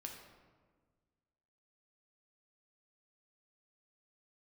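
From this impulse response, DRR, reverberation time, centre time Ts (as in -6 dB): 1.0 dB, 1.5 s, 43 ms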